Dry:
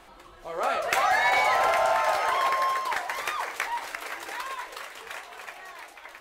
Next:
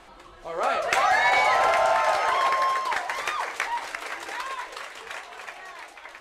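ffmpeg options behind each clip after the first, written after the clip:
-af "lowpass=9300,volume=1.26"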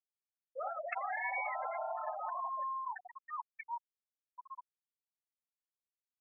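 -filter_complex "[0:a]afftfilt=real='re*gte(hypot(re,im),0.251)':imag='im*gte(hypot(re,im),0.251)':win_size=1024:overlap=0.75,acrossover=split=120|3000[s0][s1][s2];[s1]acompressor=threshold=0.0355:ratio=6[s3];[s0][s3][s2]amix=inputs=3:normalize=0,volume=0.422"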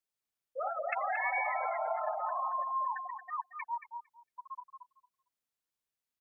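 -filter_complex "[0:a]asplit=2[s0][s1];[s1]adelay=227,lowpass=f=1400:p=1,volume=0.562,asplit=2[s2][s3];[s3]adelay=227,lowpass=f=1400:p=1,volume=0.2,asplit=2[s4][s5];[s5]adelay=227,lowpass=f=1400:p=1,volume=0.2[s6];[s0][s2][s4][s6]amix=inputs=4:normalize=0,volume=1.58"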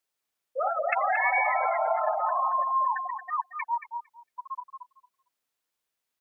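-af "bass=f=250:g=-7,treble=f=4000:g=-2,volume=2.51"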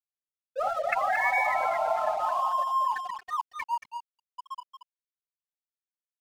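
-af "aeval=exprs='sgn(val(0))*max(abs(val(0))-0.00631,0)':c=same"

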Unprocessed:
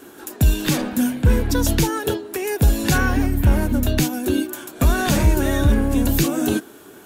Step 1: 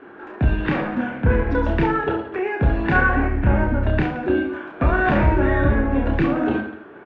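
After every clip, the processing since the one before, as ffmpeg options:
-filter_complex "[0:a]lowpass=f=2100:w=0.5412,lowpass=f=2100:w=1.3066,lowshelf=f=360:g=-7.5,asplit=2[s0][s1];[s1]aecho=0:1:30|67.5|114.4|173|246.2:0.631|0.398|0.251|0.158|0.1[s2];[s0][s2]amix=inputs=2:normalize=0,volume=1.41"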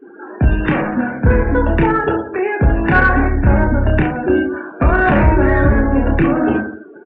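-af "afftdn=nr=25:nf=-37,acontrast=24,volume=1.12"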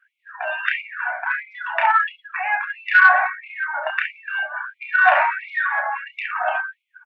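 -af "afftfilt=real='re*gte(b*sr/1024,570*pow(2100/570,0.5+0.5*sin(2*PI*1.5*pts/sr)))':imag='im*gte(b*sr/1024,570*pow(2100/570,0.5+0.5*sin(2*PI*1.5*pts/sr)))':win_size=1024:overlap=0.75,volume=1.33"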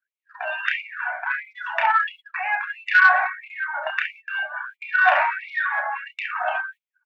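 -af "agate=range=0.0891:threshold=0.0126:ratio=16:detection=peak,bass=f=250:g=-11,treble=f=4000:g=11,volume=0.75"

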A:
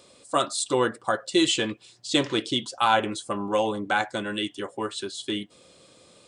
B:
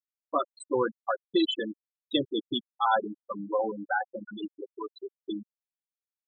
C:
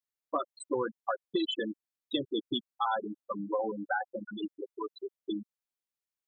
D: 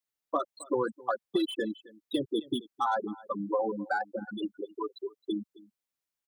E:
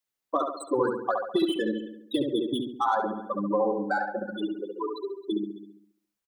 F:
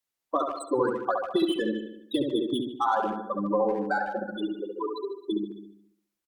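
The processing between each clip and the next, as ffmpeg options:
-af "afftfilt=real='re*gte(hypot(re,im),0.2)':imag='im*gte(hypot(re,im),0.2)':win_size=1024:overlap=0.75,volume=0.708"
-af "acompressor=threshold=0.0447:ratio=6"
-filter_complex "[0:a]aecho=1:1:266:0.0794,acrossover=split=110|360|1400[s0][s1][s2][s3];[s3]asoftclip=type=tanh:threshold=0.0112[s4];[s0][s1][s2][s4]amix=inputs=4:normalize=0,volume=1.33"
-filter_complex "[0:a]asplit=2[s0][s1];[s1]adelay=69,lowpass=f=1800:p=1,volume=0.708,asplit=2[s2][s3];[s3]adelay=69,lowpass=f=1800:p=1,volume=0.53,asplit=2[s4][s5];[s5]adelay=69,lowpass=f=1800:p=1,volume=0.53,asplit=2[s6][s7];[s7]adelay=69,lowpass=f=1800:p=1,volume=0.53,asplit=2[s8][s9];[s9]adelay=69,lowpass=f=1800:p=1,volume=0.53,asplit=2[s10][s11];[s11]adelay=69,lowpass=f=1800:p=1,volume=0.53,asplit=2[s12][s13];[s13]adelay=69,lowpass=f=1800:p=1,volume=0.53[s14];[s0][s2][s4][s6][s8][s10][s12][s14]amix=inputs=8:normalize=0,volume=1.33"
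-filter_complex "[0:a]asplit=2[s0][s1];[s1]adelay=150,highpass=300,lowpass=3400,asoftclip=type=hard:threshold=0.0891,volume=0.251[s2];[s0][s2]amix=inputs=2:normalize=0" -ar 48000 -c:a libopus -b:a 96k

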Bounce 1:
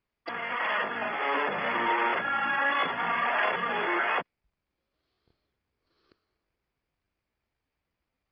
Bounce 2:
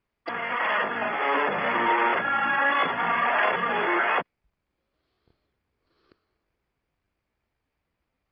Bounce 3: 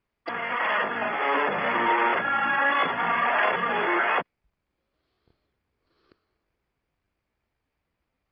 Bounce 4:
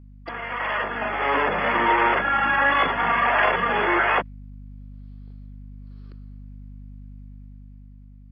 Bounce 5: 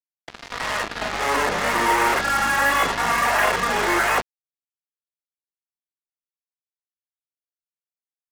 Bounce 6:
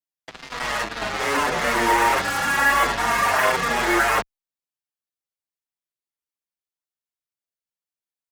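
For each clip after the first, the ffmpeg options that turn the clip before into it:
-af "lowpass=f=3300:p=1,volume=1.68"
-af anull
-af "aeval=exprs='val(0)+0.00794*(sin(2*PI*50*n/s)+sin(2*PI*2*50*n/s)/2+sin(2*PI*3*50*n/s)/3+sin(2*PI*4*50*n/s)/4+sin(2*PI*5*50*n/s)/5)':c=same,dynaudnorm=f=240:g=9:m=1.88,volume=0.794"
-af "acrusher=bits=3:mix=0:aa=0.5"
-filter_complex "[0:a]asplit=2[s0][s1];[s1]adelay=7,afreqshift=-0.94[s2];[s0][s2]amix=inputs=2:normalize=1,volume=1.41"

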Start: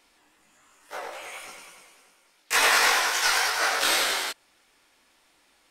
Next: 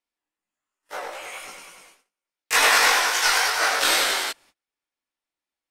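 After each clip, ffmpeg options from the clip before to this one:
-af "agate=range=0.0282:threshold=0.002:ratio=16:detection=peak,volume=1.41"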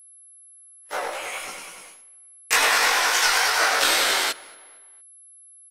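-filter_complex "[0:a]asplit=2[s0][s1];[s1]adelay=230,lowpass=f=3100:p=1,volume=0.0631,asplit=2[s2][s3];[s3]adelay=230,lowpass=f=3100:p=1,volume=0.47,asplit=2[s4][s5];[s5]adelay=230,lowpass=f=3100:p=1,volume=0.47[s6];[s0][s2][s4][s6]amix=inputs=4:normalize=0,acompressor=threshold=0.0891:ratio=5,aeval=exprs='val(0)+0.00282*sin(2*PI*11000*n/s)':c=same,volume=1.68"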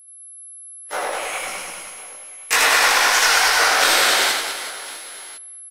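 -filter_complex "[0:a]asplit=2[s0][s1];[s1]asoftclip=type=tanh:threshold=0.141,volume=0.376[s2];[s0][s2]amix=inputs=2:normalize=0,aecho=1:1:80|200|380|650|1055:0.631|0.398|0.251|0.158|0.1"

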